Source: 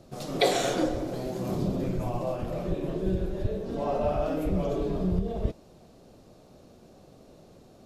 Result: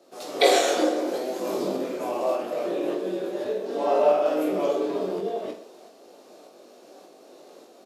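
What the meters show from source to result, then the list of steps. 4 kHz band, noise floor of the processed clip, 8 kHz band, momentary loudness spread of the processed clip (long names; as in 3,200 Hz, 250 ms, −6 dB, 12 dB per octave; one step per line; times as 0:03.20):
+5.5 dB, −52 dBFS, can't be measured, 10 LU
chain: shaped tremolo saw up 1.7 Hz, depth 35%
high-pass filter 320 Hz 24 dB per octave
reverse bouncing-ball delay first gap 20 ms, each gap 1.3×, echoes 5
automatic gain control gain up to 4.5 dB
level +2 dB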